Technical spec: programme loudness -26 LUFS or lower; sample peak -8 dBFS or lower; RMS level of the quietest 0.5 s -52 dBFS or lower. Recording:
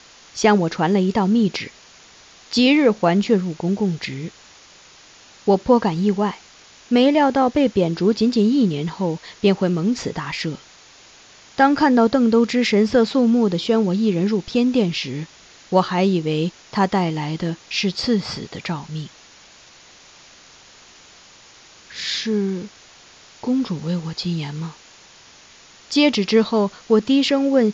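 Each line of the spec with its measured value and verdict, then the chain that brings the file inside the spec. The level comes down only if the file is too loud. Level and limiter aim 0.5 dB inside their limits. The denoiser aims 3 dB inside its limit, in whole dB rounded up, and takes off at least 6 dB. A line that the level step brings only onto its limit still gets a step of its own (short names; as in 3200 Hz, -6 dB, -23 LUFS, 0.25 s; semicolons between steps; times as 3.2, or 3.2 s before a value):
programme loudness -19.5 LUFS: fail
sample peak -4.0 dBFS: fail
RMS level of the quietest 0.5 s -47 dBFS: fail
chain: gain -7 dB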